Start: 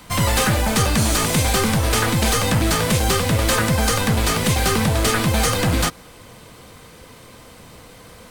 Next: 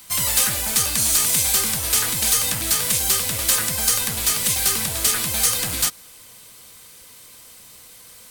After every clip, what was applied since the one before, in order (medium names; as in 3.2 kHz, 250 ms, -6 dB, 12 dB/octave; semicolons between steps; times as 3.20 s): pre-emphasis filter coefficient 0.9; trim +5.5 dB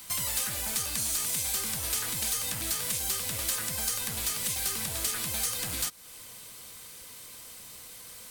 compression 2.5:1, threshold -31 dBFS, peak gain reduction 11.5 dB; trim -1.5 dB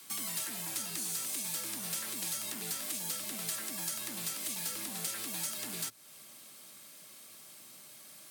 frequency shift +110 Hz; trim -6.5 dB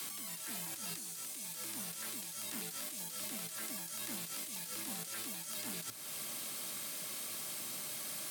compressor with a negative ratio -46 dBFS, ratio -1; trim +3.5 dB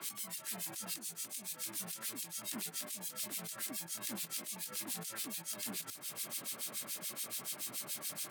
harmonic tremolo 7 Hz, depth 100%, crossover 1.9 kHz; trim +4.5 dB